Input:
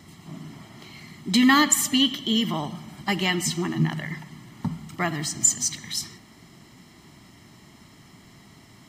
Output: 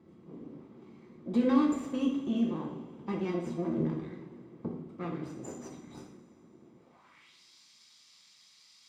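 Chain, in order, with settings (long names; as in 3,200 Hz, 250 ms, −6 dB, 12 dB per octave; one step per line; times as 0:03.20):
lower of the sound and its delayed copy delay 0.84 ms
band-pass filter sweep 350 Hz → 4,700 Hz, 0:06.75–0:07.38
coupled-rooms reverb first 0.61 s, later 3.1 s, from −18 dB, DRR −0.5 dB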